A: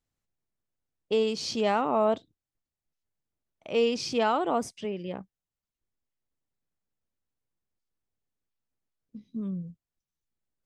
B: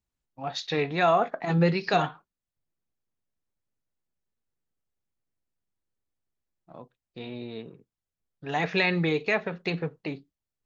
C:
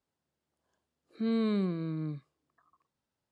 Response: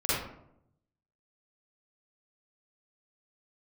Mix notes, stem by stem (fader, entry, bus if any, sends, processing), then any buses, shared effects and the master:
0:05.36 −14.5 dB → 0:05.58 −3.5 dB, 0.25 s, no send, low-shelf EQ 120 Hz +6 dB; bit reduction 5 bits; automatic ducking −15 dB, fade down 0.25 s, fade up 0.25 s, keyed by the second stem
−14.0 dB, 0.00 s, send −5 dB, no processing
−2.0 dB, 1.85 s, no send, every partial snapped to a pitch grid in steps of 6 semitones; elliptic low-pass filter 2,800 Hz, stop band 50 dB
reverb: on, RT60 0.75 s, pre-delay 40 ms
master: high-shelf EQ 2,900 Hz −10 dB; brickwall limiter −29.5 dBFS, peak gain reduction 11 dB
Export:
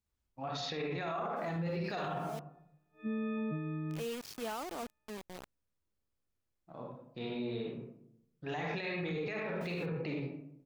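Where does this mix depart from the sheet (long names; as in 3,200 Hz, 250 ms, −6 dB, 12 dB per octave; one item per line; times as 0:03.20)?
stem B −14.0 dB → −7.0 dB
master: missing high-shelf EQ 2,900 Hz −10 dB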